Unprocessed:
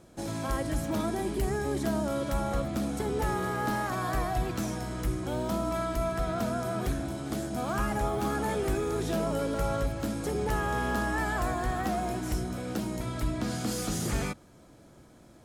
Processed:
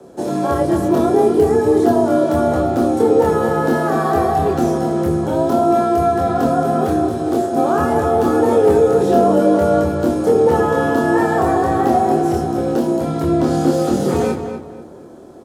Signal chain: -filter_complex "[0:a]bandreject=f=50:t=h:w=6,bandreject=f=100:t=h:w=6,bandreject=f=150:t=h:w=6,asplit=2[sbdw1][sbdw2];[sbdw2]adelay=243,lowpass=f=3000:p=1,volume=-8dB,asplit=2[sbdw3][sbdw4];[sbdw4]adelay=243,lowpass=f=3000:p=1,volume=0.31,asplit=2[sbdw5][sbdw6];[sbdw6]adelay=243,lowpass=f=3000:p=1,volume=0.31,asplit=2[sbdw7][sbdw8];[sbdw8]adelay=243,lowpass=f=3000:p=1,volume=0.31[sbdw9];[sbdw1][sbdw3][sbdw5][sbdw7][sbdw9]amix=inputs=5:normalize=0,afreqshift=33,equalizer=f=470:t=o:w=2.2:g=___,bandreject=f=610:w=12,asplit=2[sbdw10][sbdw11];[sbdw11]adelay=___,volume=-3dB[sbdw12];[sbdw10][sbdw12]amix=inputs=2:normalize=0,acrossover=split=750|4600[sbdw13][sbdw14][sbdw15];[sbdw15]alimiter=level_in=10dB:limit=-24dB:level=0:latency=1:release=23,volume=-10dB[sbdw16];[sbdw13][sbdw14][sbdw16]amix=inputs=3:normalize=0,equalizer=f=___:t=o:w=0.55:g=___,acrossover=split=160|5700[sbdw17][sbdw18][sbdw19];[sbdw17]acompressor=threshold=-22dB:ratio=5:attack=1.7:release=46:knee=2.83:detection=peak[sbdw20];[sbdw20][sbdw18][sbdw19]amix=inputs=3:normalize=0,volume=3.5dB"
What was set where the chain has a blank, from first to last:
14.5, 26, 2200, -5.5